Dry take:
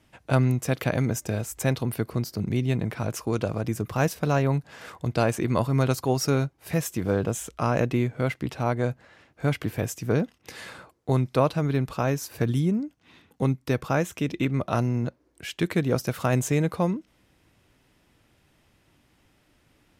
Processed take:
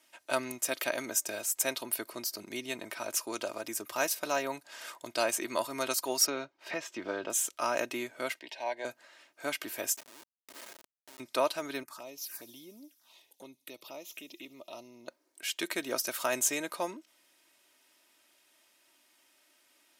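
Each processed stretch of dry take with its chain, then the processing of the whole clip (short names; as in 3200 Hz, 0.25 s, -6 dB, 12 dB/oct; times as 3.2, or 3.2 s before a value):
6.26–7.3 air absorption 190 m + three-band squash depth 70%
8.39–8.85 Butterworth band-stop 1300 Hz, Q 2.1 + three-band isolator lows -14 dB, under 450 Hz, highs -21 dB, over 4900 Hz
9.96–11.2 compressor 16:1, threshold -36 dBFS + Schmitt trigger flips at -37.5 dBFS
11.83–15.08 envelope phaser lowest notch 190 Hz, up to 1600 Hz, full sweep at -24 dBFS + compressor 2:1, threshold -41 dBFS + thin delay 70 ms, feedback 81%, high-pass 5400 Hz, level -15.5 dB
whole clip: HPF 480 Hz 12 dB/oct; high shelf 3300 Hz +12 dB; comb 3.2 ms, depth 54%; gain -6 dB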